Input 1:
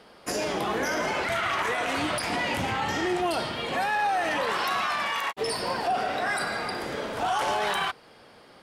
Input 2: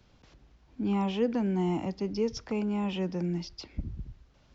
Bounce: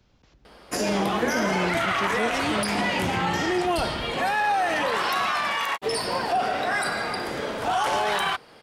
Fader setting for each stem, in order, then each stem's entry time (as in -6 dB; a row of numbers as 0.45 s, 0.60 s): +2.5 dB, -1.0 dB; 0.45 s, 0.00 s